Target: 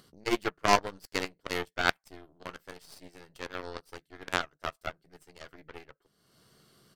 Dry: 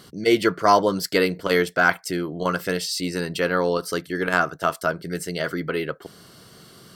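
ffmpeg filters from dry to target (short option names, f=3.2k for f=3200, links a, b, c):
-filter_complex "[0:a]asplit=2[a][b];[b]adelay=14,volume=-12dB[c];[a][c]amix=inputs=2:normalize=0,aeval=exprs='0.794*(cos(1*acos(clip(val(0)/0.794,-1,1)))-cos(1*PI/2))+0.224*(cos(3*acos(clip(val(0)/0.794,-1,1)))-cos(3*PI/2))+0.0447*(cos(4*acos(clip(val(0)/0.794,-1,1)))-cos(4*PI/2))+0.0141*(cos(7*acos(clip(val(0)/0.794,-1,1)))-cos(7*PI/2))':c=same,acompressor=mode=upward:threshold=-46dB:ratio=2.5,volume=-1dB"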